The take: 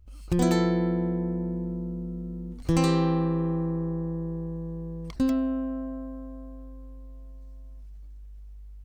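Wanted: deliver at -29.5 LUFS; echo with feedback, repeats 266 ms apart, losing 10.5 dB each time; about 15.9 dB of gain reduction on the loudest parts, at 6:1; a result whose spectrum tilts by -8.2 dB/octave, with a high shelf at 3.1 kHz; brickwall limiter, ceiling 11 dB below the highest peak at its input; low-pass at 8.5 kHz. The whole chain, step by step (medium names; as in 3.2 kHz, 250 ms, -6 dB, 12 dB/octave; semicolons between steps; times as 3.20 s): low-pass 8.5 kHz; treble shelf 3.1 kHz -7 dB; compression 6:1, threshold -36 dBFS; peak limiter -33 dBFS; feedback delay 266 ms, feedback 30%, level -10.5 dB; trim +11.5 dB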